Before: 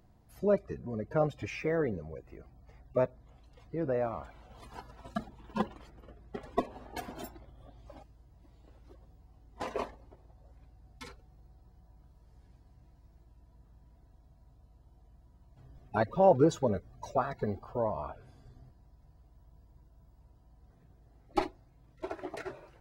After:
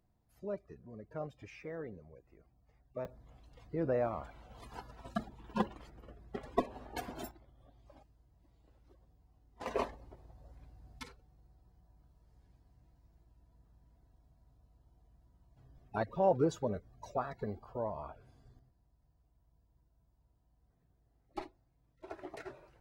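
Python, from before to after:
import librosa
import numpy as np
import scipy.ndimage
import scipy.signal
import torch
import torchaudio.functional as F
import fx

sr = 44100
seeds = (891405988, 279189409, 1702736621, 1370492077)

y = fx.gain(x, sr, db=fx.steps((0.0, -13.0), (3.05, -1.0), (7.31, -8.5), (9.66, 1.0), (11.03, -6.0), (18.59, -12.5), (22.08, -6.0)))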